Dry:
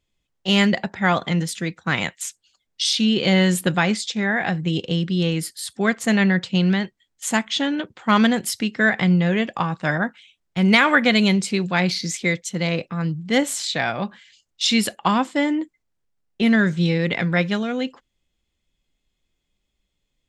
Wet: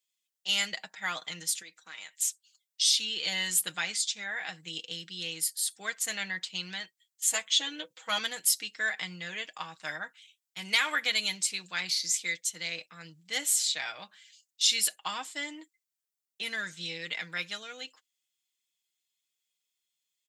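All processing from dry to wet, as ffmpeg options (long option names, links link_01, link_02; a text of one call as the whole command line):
ffmpeg -i in.wav -filter_complex "[0:a]asettb=1/sr,asplit=3[link_01][link_02][link_03];[link_01]atrim=end=1.624[link_04];[link_02]atrim=start=1.62:end=2.22,asetpts=PTS-STARTPTS,afade=type=in:duration=0.004:curve=qsin,afade=type=out:start_time=0.596:duration=0.004:curve=qsin,highpass=220,acompressor=threshold=-34dB:ratio=2.5:attack=3.2:release=140:knee=1:detection=peak[link_05];[link_03]atrim=start=2.216[link_06];[link_04][link_05]acrossfade=duration=0.004:curve1=hsin:curve2=qsin[link_07];[link_07][link_06]acrossfade=duration=0.004:curve1=qsin:curve2=hsin,asettb=1/sr,asplit=3[link_08][link_09][link_10];[link_08]atrim=end=7.334[link_11];[link_09]atrim=start=7.33:end=8.19,asetpts=PTS-STARTPTS,afade=type=in:duration=0.004:curve=qsin,afade=type=out:start_time=0.856:duration=0.004:curve=qsin,equalizer=frequency=500:width_type=o:width=0.32:gain=11.5,aecho=1:1:6.1:0.75,atrim=end_sample=37926[link_12];[link_10]atrim=start=8.186[link_13];[link_11][link_12]acrossfade=duration=0.004:curve1=hsin:curve2=qsin[link_14];[link_14][link_13]acrossfade=duration=0.004:curve1=qsin:curve2=hsin,aderivative,aecho=1:1:6.4:0.55" out.wav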